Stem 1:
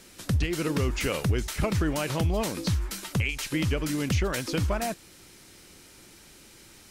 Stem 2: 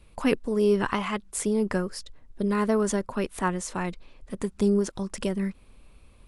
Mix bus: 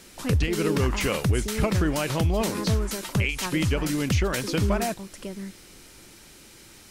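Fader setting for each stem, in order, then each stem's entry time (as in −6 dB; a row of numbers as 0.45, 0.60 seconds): +2.5, −8.0 decibels; 0.00, 0.00 seconds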